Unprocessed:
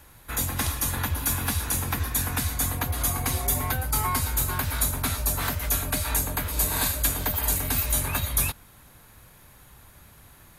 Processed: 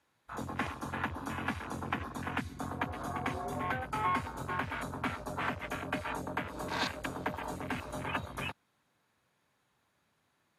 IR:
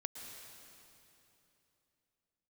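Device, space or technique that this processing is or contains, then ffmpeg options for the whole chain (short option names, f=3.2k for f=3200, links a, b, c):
over-cleaned archive recording: -af "highpass=180,lowpass=6.2k,afwtdn=0.02,volume=-2.5dB"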